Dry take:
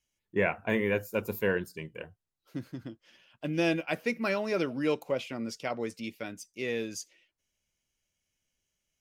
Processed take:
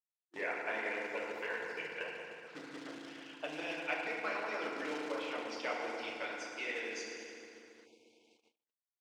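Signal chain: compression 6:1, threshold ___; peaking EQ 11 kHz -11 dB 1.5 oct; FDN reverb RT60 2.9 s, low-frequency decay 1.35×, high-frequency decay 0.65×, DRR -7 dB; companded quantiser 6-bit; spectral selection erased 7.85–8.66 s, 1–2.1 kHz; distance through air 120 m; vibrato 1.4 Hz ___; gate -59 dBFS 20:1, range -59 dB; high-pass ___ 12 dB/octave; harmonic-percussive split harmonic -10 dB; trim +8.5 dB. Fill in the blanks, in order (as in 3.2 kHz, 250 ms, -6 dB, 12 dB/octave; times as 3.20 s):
-39 dBFS, 9.1 cents, 750 Hz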